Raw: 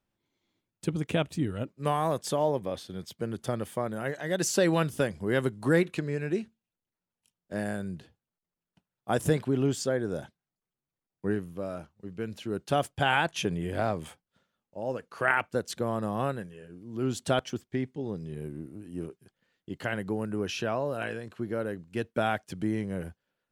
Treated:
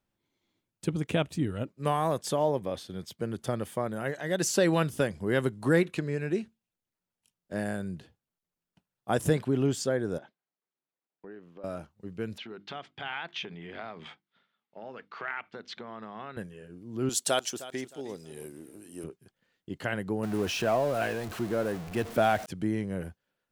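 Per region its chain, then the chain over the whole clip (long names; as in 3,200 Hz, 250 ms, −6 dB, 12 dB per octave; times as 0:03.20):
0:10.18–0:11.64: high-pass filter 320 Hz + downward compressor 3 to 1, threshold −45 dBFS + high-frequency loss of the air 200 metres
0:12.38–0:16.37: downward compressor 4 to 1, threshold −34 dBFS + loudspeaker in its box 220–4,500 Hz, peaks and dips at 310 Hz −6 dB, 540 Hz −8 dB, 1,300 Hz +3 dB, 2,100 Hz +7 dB, 3,500 Hz +5 dB + mains-hum notches 50/100/150/200/250/300/350 Hz
0:17.09–0:19.04: bass and treble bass −15 dB, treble +13 dB + repeating echo 310 ms, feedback 27%, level −16 dB
0:20.23–0:22.46: converter with a step at zero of −36 dBFS + parametric band 690 Hz +6 dB 0.3 octaves
whole clip: no processing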